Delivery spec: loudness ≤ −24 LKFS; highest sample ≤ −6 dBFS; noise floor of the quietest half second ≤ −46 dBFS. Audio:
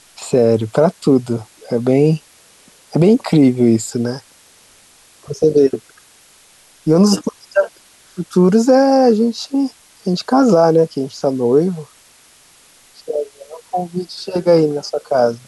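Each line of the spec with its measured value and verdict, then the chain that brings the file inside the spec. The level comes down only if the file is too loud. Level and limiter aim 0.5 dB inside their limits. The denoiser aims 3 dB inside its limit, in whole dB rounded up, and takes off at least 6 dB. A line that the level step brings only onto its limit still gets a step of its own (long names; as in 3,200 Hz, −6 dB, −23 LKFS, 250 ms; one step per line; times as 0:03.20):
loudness −15.5 LKFS: out of spec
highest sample −2.5 dBFS: out of spec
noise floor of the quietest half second −48 dBFS: in spec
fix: level −9 dB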